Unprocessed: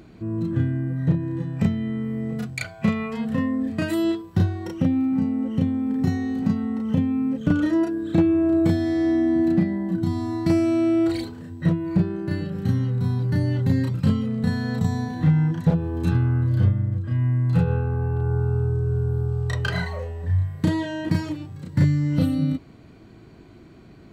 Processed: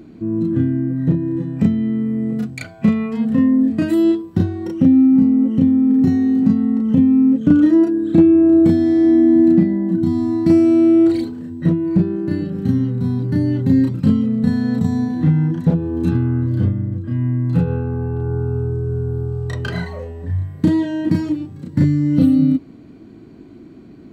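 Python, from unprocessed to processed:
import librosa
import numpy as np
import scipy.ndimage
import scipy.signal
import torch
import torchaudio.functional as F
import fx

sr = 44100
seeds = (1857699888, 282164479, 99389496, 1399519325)

y = fx.peak_eq(x, sr, hz=270.0, db=12.5, octaves=1.2)
y = y * librosa.db_to_amplitude(-1.5)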